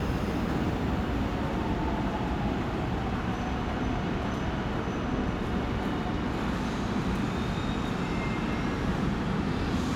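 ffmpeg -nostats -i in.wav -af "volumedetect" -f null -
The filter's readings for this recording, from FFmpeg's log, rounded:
mean_volume: -29.2 dB
max_volume: -15.7 dB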